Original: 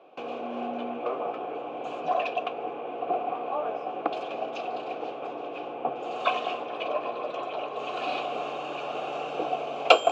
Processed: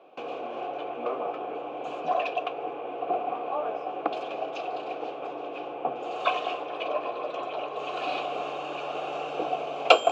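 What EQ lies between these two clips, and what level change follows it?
hum notches 60/120/180/240 Hz; 0.0 dB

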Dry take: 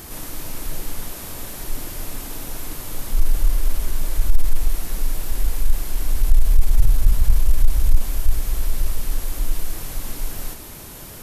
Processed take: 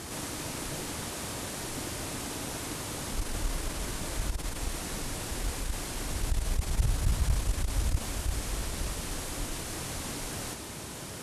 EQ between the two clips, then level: high-pass 77 Hz 12 dB/octave; low-pass 9.9 kHz 24 dB/octave; 0.0 dB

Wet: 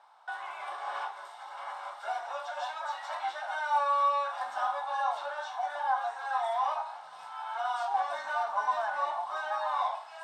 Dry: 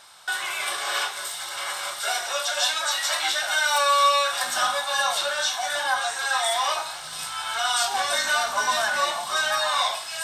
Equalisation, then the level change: band-pass filter 850 Hz, Q 3.4; 0.0 dB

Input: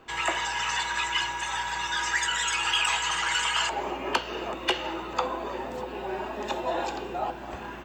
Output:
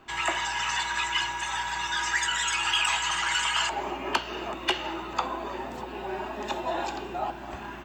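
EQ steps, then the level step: peaking EQ 490 Hz -12.5 dB 0.2 oct; 0.0 dB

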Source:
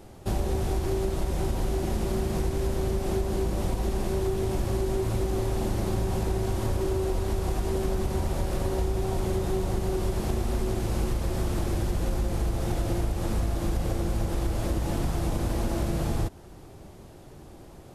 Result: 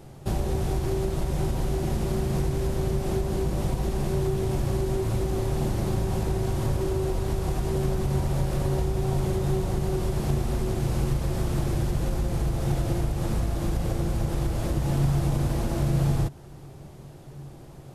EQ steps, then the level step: peaking EQ 140 Hz +14.5 dB 0.21 oct; 0.0 dB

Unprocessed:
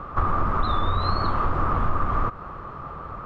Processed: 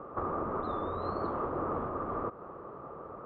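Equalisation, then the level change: band-pass filter 440 Hz, Q 1.5; 0.0 dB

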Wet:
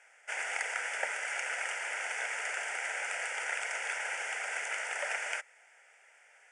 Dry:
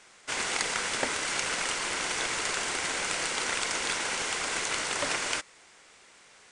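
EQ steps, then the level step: high-pass 870 Hz 12 dB/octave; treble shelf 2.6 kHz -11.5 dB; static phaser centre 1.1 kHz, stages 6; +3.5 dB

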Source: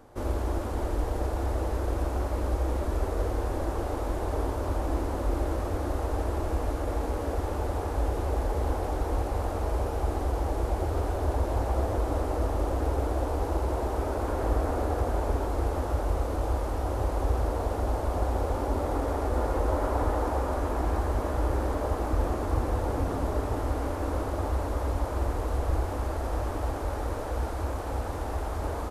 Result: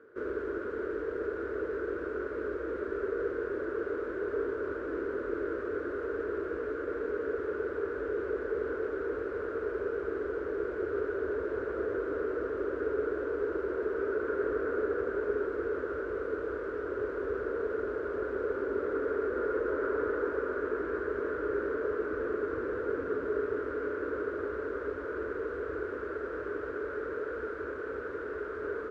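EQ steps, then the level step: two resonant band-passes 790 Hz, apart 1.8 oct; distance through air 53 m; +8.5 dB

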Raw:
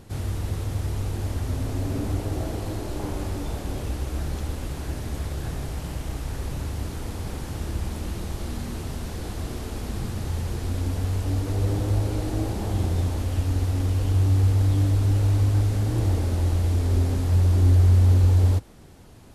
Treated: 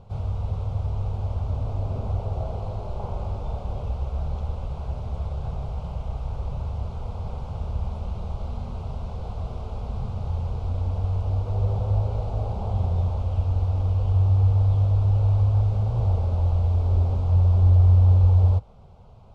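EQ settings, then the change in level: low-pass 2.2 kHz 12 dB/octave; static phaser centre 740 Hz, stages 4; +2.0 dB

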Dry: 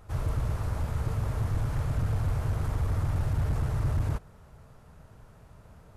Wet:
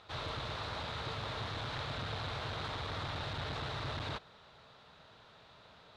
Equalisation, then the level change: high-pass 720 Hz 6 dB/octave; resonant low-pass 3.8 kHz, resonance Q 5.6; +2.0 dB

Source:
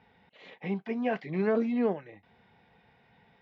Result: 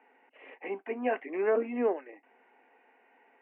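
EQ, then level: Chebyshev band-pass 260–2800 Hz, order 5; distance through air 110 m; +2.0 dB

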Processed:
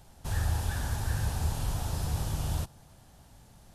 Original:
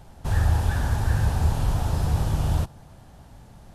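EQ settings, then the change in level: treble shelf 3 kHz +10 dB; -8.5 dB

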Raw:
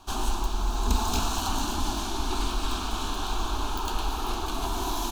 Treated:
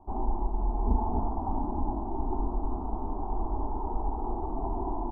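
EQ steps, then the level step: elliptic low-pass 890 Hz, stop band 60 dB; 0.0 dB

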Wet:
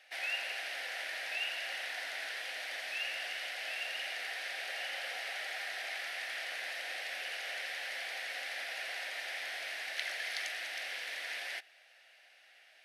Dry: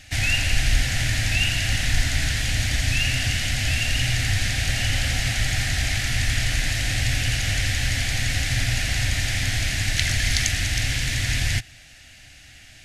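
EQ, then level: steep high-pass 450 Hz 36 dB/octave; treble shelf 2.3 kHz -9.5 dB; peaking EQ 7.1 kHz -12 dB 0.5 oct; -7.0 dB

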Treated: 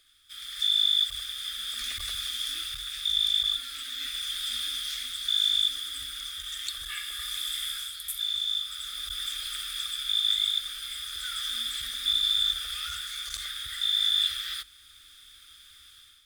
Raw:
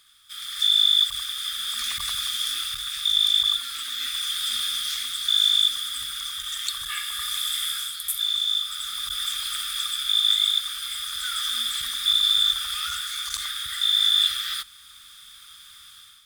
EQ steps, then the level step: treble shelf 2.3 kHz -11 dB; static phaser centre 410 Hz, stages 4; +3.5 dB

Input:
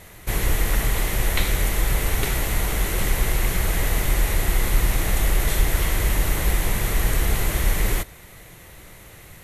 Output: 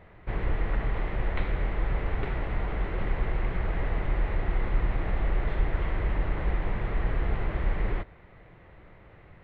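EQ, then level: distance through air 400 m; tape spacing loss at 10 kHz 30 dB; bass shelf 450 Hz -6 dB; 0.0 dB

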